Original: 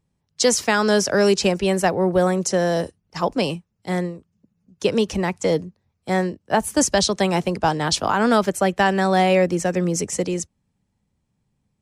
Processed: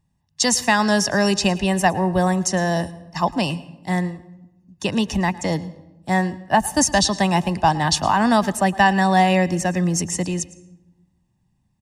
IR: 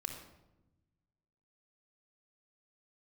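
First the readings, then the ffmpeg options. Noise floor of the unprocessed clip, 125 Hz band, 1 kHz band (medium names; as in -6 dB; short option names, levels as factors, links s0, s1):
-73 dBFS, +3.0 dB, +3.5 dB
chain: -filter_complex "[0:a]aecho=1:1:1.1:0.7,asplit=2[s0][s1];[1:a]atrim=start_sample=2205,adelay=110[s2];[s1][s2]afir=irnorm=-1:irlink=0,volume=0.15[s3];[s0][s3]amix=inputs=2:normalize=0"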